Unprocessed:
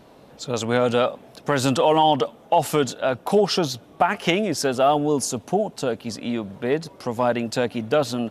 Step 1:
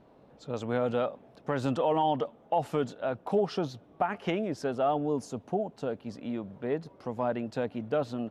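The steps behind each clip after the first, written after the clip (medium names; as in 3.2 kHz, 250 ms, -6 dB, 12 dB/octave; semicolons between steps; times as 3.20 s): low-pass 1.3 kHz 6 dB/octave; trim -8 dB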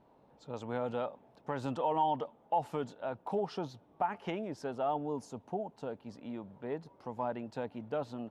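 peaking EQ 900 Hz +8.5 dB 0.33 oct; trim -7.5 dB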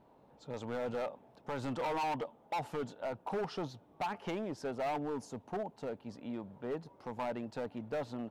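hard clipper -33 dBFS, distortion -8 dB; trim +1 dB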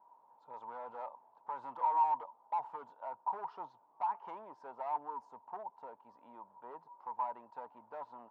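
band-pass filter 960 Hz, Q 11; trim +10.5 dB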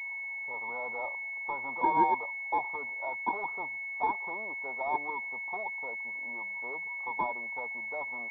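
class-D stage that switches slowly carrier 2.2 kHz; trim +7.5 dB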